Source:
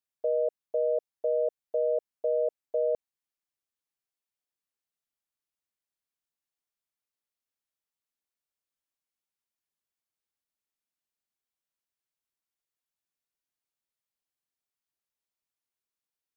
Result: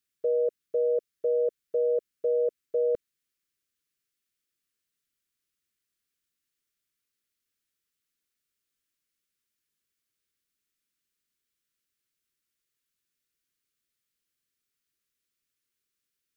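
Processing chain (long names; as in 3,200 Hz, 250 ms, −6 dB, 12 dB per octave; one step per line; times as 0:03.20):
Butterworth band-reject 780 Hz, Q 0.97
level +7.5 dB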